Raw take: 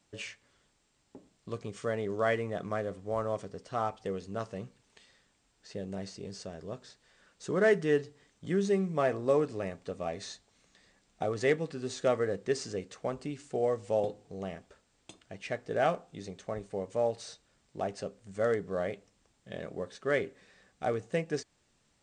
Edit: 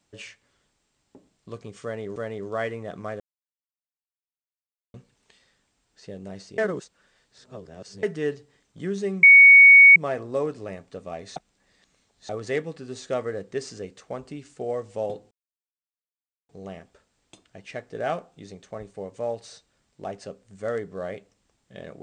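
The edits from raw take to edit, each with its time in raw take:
1.83–2.16 s: loop, 2 plays
2.87–4.61 s: mute
6.25–7.70 s: reverse
8.90 s: add tone 2.23 kHz -7 dBFS 0.73 s
10.30–11.23 s: reverse
14.25 s: insert silence 1.18 s

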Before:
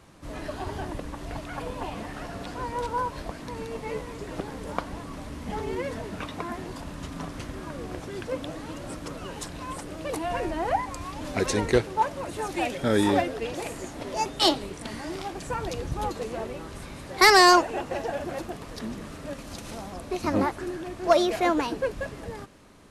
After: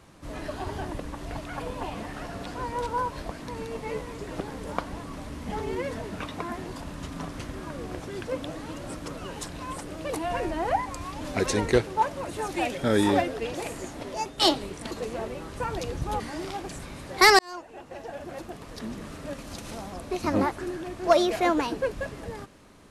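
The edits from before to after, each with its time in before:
13.91–14.38 s: fade out linear, to -6.5 dB
14.91–15.50 s: swap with 16.10–16.79 s
17.39–19.11 s: fade in

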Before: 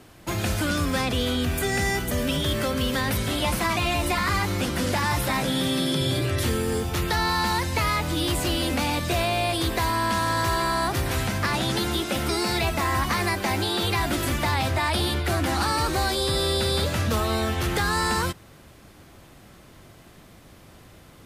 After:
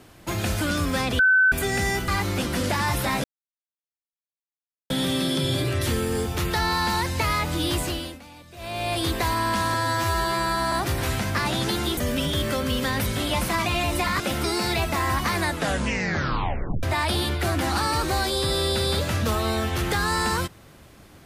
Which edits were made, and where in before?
1.19–1.52 s: bleep 1.52 kHz -14 dBFS
2.08–4.31 s: move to 12.05 s
5.47 s: insert silence 1.66 s
8.33–9.56 s: dip -20.5 dB, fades 0.43 s
10.31–10.80 s: stretch 2×
13.18 s: tape stop 1.50 s

